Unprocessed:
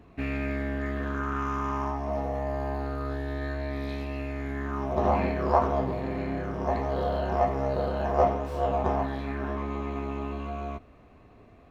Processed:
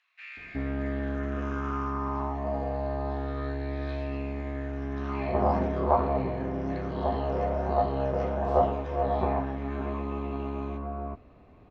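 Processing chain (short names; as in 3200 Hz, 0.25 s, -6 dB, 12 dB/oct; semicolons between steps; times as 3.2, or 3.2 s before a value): air absorption 120 m; bands offset in time highs, lows 0.37 s, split 1700 Hz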